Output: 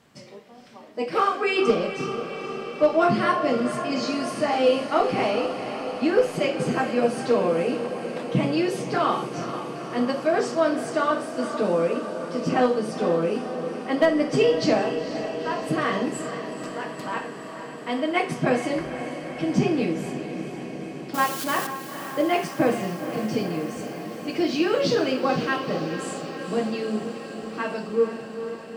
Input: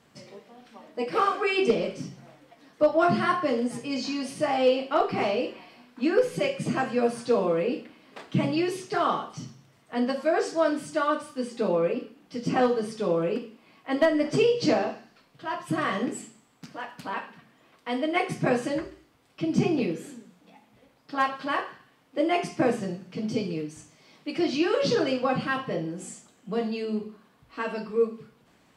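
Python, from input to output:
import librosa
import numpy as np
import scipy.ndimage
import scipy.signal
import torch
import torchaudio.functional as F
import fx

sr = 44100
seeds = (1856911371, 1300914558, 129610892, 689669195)

y = fx.crossing_spikes(x, sr, level_db=-24.0, at=(21.14, 21.67))
y = fx.echo_diffused(y, sr, ms=477, feedback_pct=75, wet_db=-10)
y = y * librosa.db_to_amplitude(2.0)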